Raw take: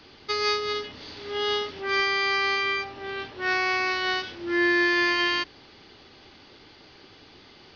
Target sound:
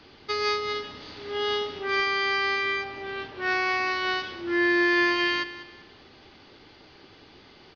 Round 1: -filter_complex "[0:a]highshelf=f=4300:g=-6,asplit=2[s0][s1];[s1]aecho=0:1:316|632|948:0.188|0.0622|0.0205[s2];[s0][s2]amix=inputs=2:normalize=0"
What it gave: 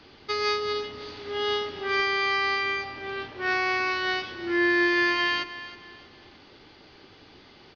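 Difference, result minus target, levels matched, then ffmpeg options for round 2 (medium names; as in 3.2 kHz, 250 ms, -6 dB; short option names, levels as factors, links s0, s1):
echo 121 ms late
-filter_complex "[0:a]highshelf=f=4300:g=-6,asplit=2[s0][s1];[s1]aecho=0:1:195|390|585:0.188|0.0622|0.0205[s2];[s0][s2]amix=inputs=2:normalize=0"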